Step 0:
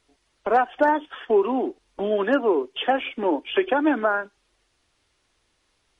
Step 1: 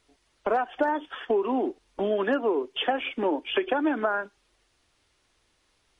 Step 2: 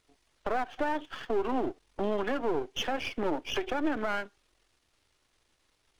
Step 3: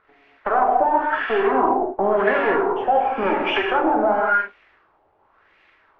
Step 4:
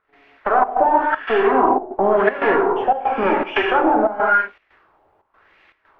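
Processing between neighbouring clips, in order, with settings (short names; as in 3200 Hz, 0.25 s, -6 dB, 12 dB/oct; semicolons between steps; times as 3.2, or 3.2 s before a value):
compressor, threshold -21 dBFS, peak gain reduction 7.5 dB
half-wave gain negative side -12 dB; limiter -19 dBFS, peak gain reduction 6.5 dB
overdrive pedal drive 15 dB, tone 2500 Hz, clips at -18.5 dBFS; non-linear reverb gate 0.26 s flat, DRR -2 dB; LFO low-pass sine 0.93 Hz 760–2300 Hz; gain +3.5 dB
step gate ".xxxx.xxx" 118 bpm -12 dB; gain +3 dB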